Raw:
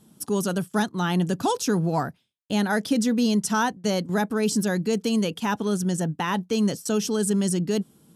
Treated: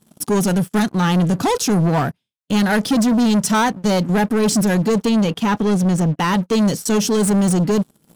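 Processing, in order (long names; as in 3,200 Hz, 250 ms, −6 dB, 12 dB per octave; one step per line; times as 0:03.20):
harmonic and percussive parts rebalanced percussive −5 dB
leveller curve on the samples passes 3
0:05.05–0:06.19: high-shelf EQ 5,900 Hz −7 dB
level +2 dB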